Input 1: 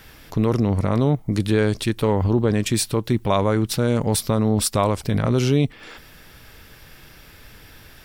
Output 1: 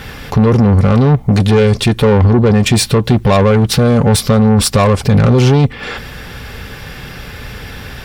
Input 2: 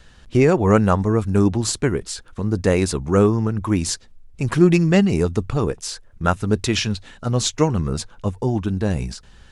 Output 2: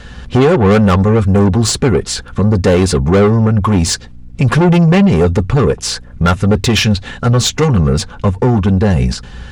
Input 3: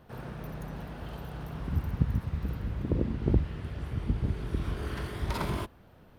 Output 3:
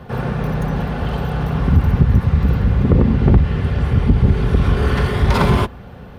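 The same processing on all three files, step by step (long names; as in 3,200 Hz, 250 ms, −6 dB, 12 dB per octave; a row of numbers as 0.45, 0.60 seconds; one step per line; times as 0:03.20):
low-pass filter 3,700 Hz 6 dB per octave
in parallel at −0.5 dB: downward compressor, threshold −25 dBFS
on the sum: mains hum 60 Hz, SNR 31 dB
soft clipping −17.5 dBFS
notch comb filter 320 Hz
normalise the peak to −2 dBFS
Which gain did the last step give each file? +13.5, +12.0, +14.5 decibels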